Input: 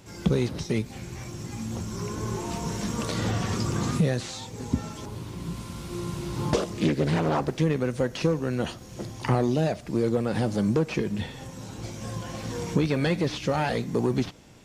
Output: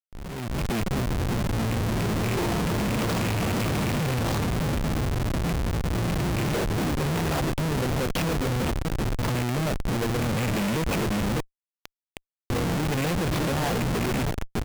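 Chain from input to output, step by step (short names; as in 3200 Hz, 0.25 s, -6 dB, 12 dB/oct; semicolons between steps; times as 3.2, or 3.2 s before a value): rattling part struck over -27 dBFS, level -20 dBFS; 5.69–6.25 bell 650 Hz -9 dB 1.1 oct; 8.22–8.64 resonator 59 Hz, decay 0.25 s, harmonics all, mix 80%; echo 0.605 s -11.5 dB; compressor 10:1, threshold -24 dBFS, peak gain reduction 8 dB; 11.4–12.5 differentiator; Schmitt trigger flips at -32.5 dBFS; AGC gain up to 12 dB; gain -6 dB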